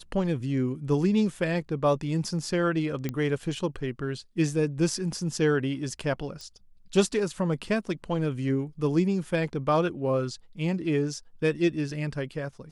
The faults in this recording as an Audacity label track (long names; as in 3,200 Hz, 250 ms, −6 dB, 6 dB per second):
3.090000	3.090000	click −17 dBFS
6.410000	6.410000	click